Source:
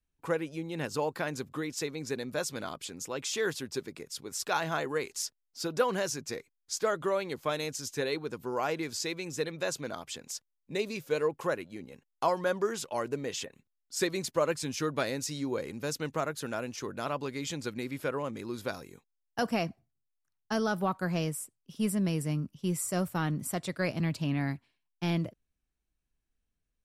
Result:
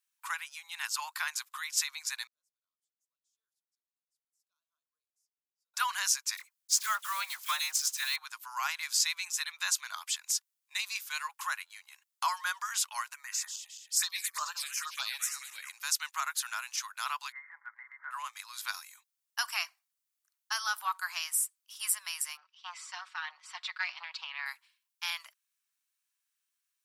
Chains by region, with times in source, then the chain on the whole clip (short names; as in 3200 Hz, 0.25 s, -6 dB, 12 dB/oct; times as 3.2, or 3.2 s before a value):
2.27–5.74 inverse Chebyshev low-pass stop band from 760 Hz, stop band 60 dB + tilt +2 dB/oct
6.37–8.18 block floating point 5-bit + dispersion lows, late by 51 ms, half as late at 1200 Hz
13.13–15.69 regenerating reverse delay 0.108 s, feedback 62%, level -10 dB + envelope phaser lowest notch 170 Hz, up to 2200 Hz, full sweep at -25 dBFS
17.32–18.11 Chebyshev low-pass 2100 Hz, order 10 + comb 6.1 ms, depth 33% + compressor 2:1, threshold -37 dBFS
22.37–24.46 LPF 4300 Hz 24 dB/oct + comb 5.4 ms, depth 51% + core saturation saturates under 590 Hz
whole clip: steep high-pass 960 Hz 48 dB/oct; high shelf 4100 Hz +9.5 dB; gain +2 dB